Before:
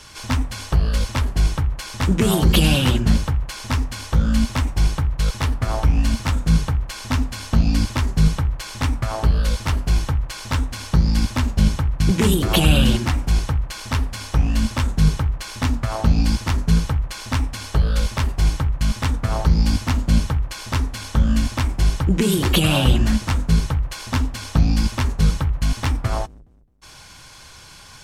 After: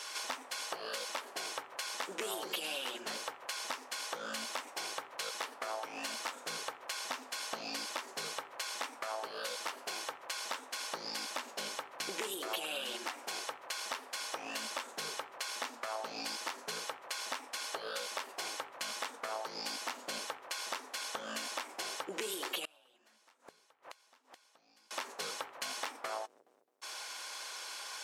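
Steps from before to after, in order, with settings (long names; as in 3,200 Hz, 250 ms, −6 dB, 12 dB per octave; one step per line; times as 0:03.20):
high-pass filter 440 Hz 24 dB per octave
downward compressor 6 to 1, threshold −37 dBFS, peak gain reduction 20 dB
0:22.65–0:24.91: gate with flip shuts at −38 dBFS, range −27 dB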